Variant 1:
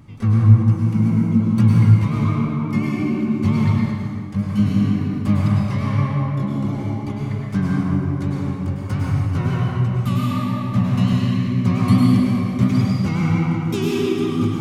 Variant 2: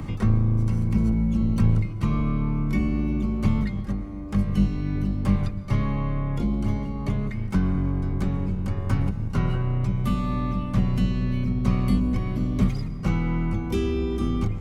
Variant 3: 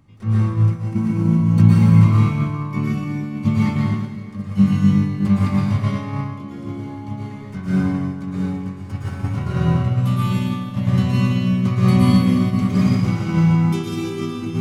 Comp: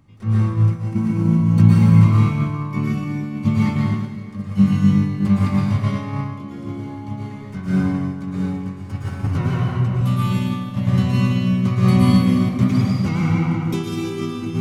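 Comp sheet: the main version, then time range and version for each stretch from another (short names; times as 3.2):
3
9.27–10.01 from 1
12.49–13.74 from 1
not used: 2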